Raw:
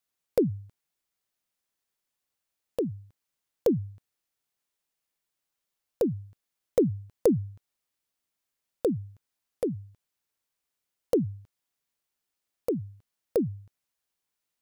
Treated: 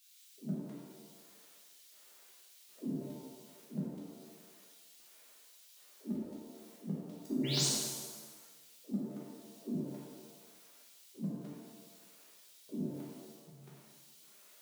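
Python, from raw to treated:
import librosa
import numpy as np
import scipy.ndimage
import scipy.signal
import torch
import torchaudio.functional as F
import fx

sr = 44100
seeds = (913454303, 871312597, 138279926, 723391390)

y = scipy.signal.sosfilt(scipy.signal.butter(4, 100.0, 'highpass', fs=sr, output='sos'), x)
y = fx.over_compress(y, sr, threshold_db=-30.0, ratio=-0.5)
y = fx.auto_swell(y, sr, attack_ms=456.0)
y = fx.filter_lfo_highpass(y, sr, shape='square', hz=1.3, low_hz=290.0, high_hz=3200.0, q=1.1)
y = fx.spec_paint(y, sr, seeds[0], shape='rise', start_s=7.44, length_s=0.22, low_hz=1900.0, high_hz=7000.0, level_db=-46.0)
y = fx.pitch_keep_formants(y, sr, semitones=5.5)
y = fx.rev_shimmer(y, sr, seeds[1], rt60_s=1.3, semitones=7, shimmer_db=-8, drr_db=-6.5)
y = y * 10.0 ** (13.0 / 20.0)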